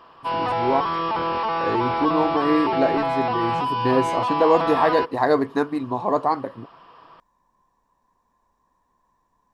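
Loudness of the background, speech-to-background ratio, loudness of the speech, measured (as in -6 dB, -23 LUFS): -24.0 LUFS, 1.0 dB, -23.0 LUFS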